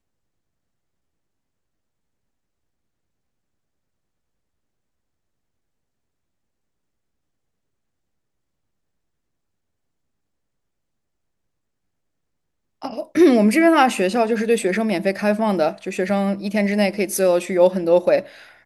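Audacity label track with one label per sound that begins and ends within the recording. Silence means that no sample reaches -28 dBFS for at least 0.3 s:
12.820000	18.210000	sound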